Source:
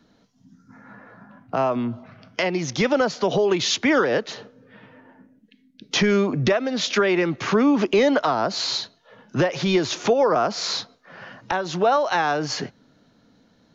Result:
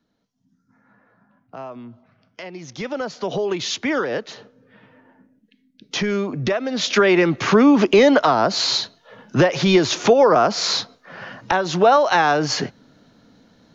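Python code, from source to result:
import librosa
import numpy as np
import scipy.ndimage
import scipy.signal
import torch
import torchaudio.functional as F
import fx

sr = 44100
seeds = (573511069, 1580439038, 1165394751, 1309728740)

y = fx.gain(x, sr, db=fx.line((2.41, -12.5), (3.34, -3.0), (6.38, -3.0), (7.09, 5.0)))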